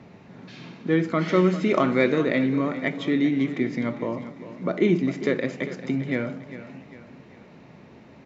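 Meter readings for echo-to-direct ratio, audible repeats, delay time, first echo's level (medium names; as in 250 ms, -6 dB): -12.5 dB, 3, 400 ms, -13.5 dB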